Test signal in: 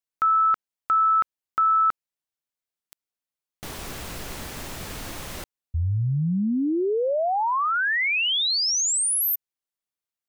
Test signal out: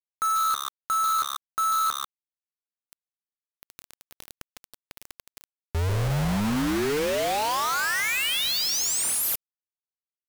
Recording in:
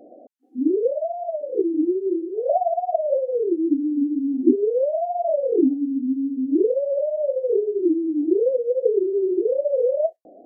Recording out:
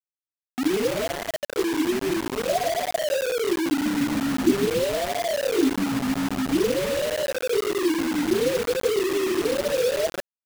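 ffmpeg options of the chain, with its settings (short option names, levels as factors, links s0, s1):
-filter_complex "[0:a]lowshelf=f=440:g=2.5,asplit=6[s0][s1][s2][s3][s4][s5];[s1]adelay=142,afreqshift=-69,volume=0.355[s6];[s2]adelay=284,afreqshift=-138,volume=0.157[s7];[s3]adelay=426,afreqshift=-207,volume=0.0684[s8];[s4]adelay=568,afreqshift=-276,volume=0.0302[s9];[s5]adelay=710,afreqshift=-345,volume=0.0133[s10];[s0][s6][s7][s8][s9][s10]amix=inputs=6:normalize=0,acrusher=bits=3:mix=0:aa=0.000001,volume=0.562"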